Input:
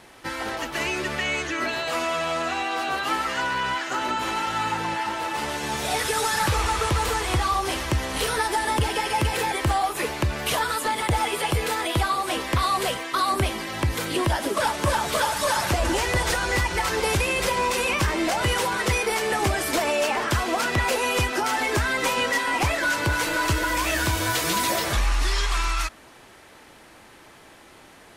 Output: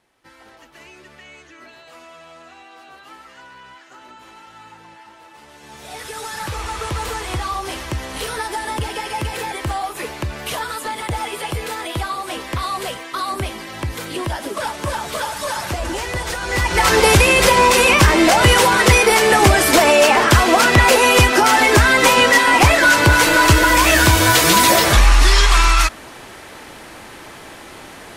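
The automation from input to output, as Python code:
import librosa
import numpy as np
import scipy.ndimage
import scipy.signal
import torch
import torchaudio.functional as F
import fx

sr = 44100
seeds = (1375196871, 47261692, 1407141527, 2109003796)

y = fx.gain(x, sr, db=fx.line((5.46, -16.5), (6.02, -7.5), (6.99, -1.0), (16.39, -1.0), (16.88, 11.5)))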